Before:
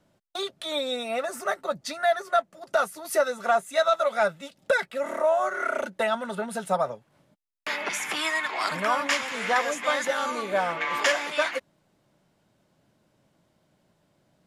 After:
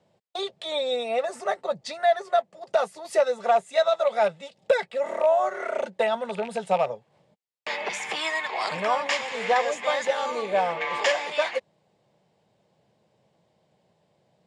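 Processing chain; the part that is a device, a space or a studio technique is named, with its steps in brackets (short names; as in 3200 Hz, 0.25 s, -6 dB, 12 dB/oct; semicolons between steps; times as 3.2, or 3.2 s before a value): car door speaker with a rattle (rattling part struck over -38 dBFS, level -26 dBFS; speaker cabinet 88–7900 Hz, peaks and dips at 280 Hz -10 dB, 470 Hz +7 dB, 790 Hz +5 dB, 1400 Hz -9 dB, 6100 Hz -5 dB)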